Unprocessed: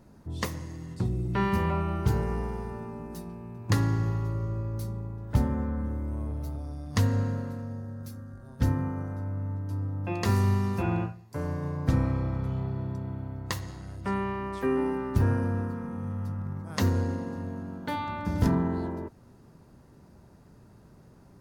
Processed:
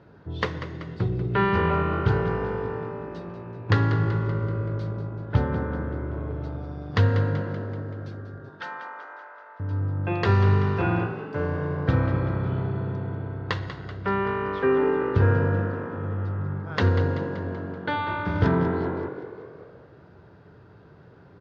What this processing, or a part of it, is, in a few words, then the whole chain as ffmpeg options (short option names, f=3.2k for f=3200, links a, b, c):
frequency-shifting delay pedal into a guitar cabinet: -filter_complex "[0:a]asettb=1/sr,asplit=3[a][b][c];[a]atrim=end=8.494[d];[b]atrim=start=8.49:end=9.6,asetpts=PTS-STARTPTS,afade=t=in:d=0.004:c=qsin,afade=t=out:st=1.106:d=0.004:c=qsin,highpass=f=730:w=0.5412,highpass=f=730:w=1.3066[e];[c]atrim=start=9.596[f];[d][e]acrossfade=d=0.004:c1=hsin:c2=qsin[g];[g][f]acrossfade=d=0.004:c1=qsin:c2=hsin,asplit=7[h][i][j][k][l][m][n];[i]adelay=191,afreqshift=49,volume=-11.5dB[o];[j]adelay=382,afreqshift=98,volume=-16.7dB[p];[k]adelay=573,afreqshift=147,volume=-21.9dB[q];[l]adelay=764,afreqshift=196,volume=-27.1dB[r];[m]adelay=955,afreqshift=245,volume=-32.3dB[s];[n]adelay=1146,afreqshift=294,volume=-37.5dB[t];[h][o][p][q][r][s][t]amix=inputs=7:normalize=0,highpass=91,equalizer=f=94:t=q:w=4:g=4,equalizer=f=230:t=q:w=4:g=-9,equalizer=f=440:t=q:w=4:g=6,equalizer=f=1.5k:t=q:w=4:g=8,equalizer=f=3.3k:t=q:w=4:g=3,lowpass=f=4k:w=0.5412,lowpass=f=4k:w=1.3066,volume=4dB"